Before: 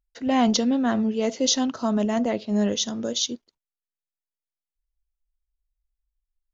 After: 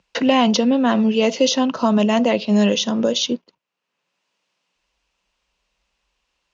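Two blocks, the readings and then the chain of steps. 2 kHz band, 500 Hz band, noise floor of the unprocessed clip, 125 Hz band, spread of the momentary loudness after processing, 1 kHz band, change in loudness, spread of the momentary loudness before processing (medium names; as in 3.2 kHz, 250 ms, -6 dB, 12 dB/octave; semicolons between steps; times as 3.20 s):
+9.0 dB, +8.0 dB, under -85 dBFS, +6.5 dB, 3 LU, +6.5 dB, +6.0 dB, 6 LU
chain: cabinet simulation 150–6300 Hz, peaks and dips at 180 Hz +8 dB, 530 Hz +6 dB, 1 kHz +7 dB, 2.7 kHz +9 dB; three bands compressed up and down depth 70%; trim +4 dB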